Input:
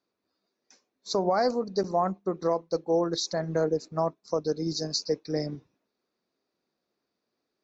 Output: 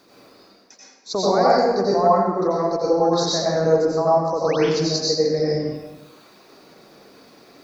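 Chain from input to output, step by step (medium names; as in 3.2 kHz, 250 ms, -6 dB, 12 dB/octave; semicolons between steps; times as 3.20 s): reverb removal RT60 0.82 s; reverse; upward compressor, threshold -36 dBFS; reverse; painted sound rise, 4.37–4.57 s, 380–3900 Hz -38 dBFS; reverberation RT60 1.2 s, pre-delay 82 ms, DRR -7 dB; trim +2 dB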